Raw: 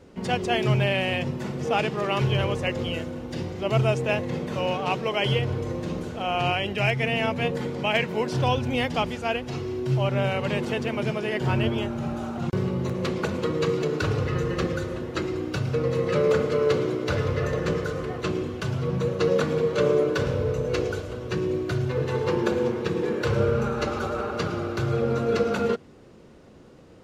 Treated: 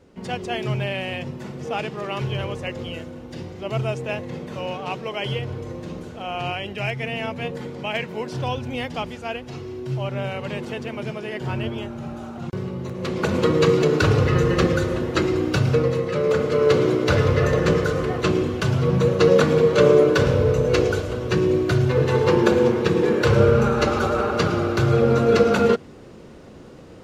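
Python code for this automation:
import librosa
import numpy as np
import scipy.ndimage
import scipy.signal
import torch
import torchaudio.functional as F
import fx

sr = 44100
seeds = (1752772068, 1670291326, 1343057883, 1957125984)

y = fx.gain(x, sr, db=fx.line((12.94, -3.0), (13.37, 7.5), (15.72, 7.5), (16.11, -1.0), (16.88, 7.0)))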